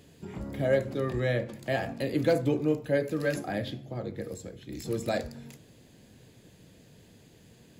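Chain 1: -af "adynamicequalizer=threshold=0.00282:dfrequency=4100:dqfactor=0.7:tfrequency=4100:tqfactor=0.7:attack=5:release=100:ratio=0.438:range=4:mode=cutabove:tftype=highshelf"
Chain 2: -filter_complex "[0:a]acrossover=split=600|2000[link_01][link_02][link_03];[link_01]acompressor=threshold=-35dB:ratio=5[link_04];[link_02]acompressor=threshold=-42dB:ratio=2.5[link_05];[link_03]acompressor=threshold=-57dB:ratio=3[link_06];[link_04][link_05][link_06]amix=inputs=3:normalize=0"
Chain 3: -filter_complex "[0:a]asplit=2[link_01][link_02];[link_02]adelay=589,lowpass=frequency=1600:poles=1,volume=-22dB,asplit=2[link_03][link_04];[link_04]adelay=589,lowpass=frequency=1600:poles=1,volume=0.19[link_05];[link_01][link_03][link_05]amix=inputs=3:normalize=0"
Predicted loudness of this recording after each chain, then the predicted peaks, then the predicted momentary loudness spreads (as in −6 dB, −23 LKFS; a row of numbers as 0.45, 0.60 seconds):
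−30.5, −37.5, −30.5 LKFS; −13.5, −22.5, −13.5 dBFS; 15, 20, 15 LU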